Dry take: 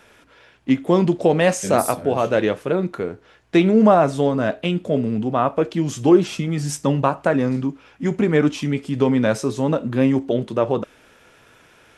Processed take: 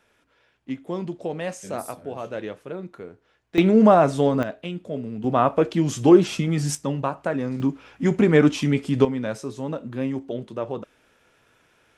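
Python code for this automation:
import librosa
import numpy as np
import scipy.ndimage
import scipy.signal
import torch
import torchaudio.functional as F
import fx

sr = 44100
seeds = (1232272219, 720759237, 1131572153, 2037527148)

y = fx.gain(x, sr, db=fx.steps((0.0, -13.0), (3.58, -1.0), (4.43, -10.0), (5.24, 0.0), (6.75, -7.0), (7.6, 1.0), (9.05, -9.5)))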